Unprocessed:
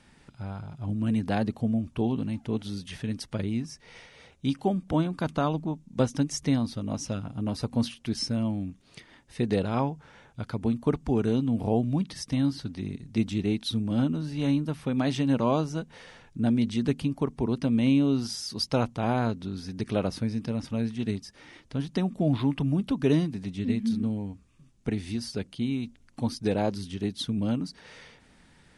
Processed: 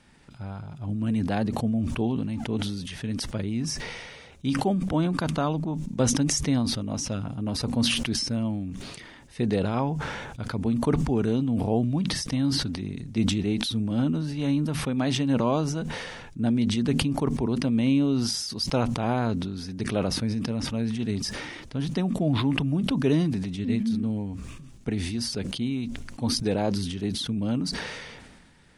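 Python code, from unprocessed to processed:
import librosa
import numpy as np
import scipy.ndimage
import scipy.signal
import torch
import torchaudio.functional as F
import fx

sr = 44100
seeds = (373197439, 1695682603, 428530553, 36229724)

y = fx.sustainer(x, sr, db_per_s=33.0)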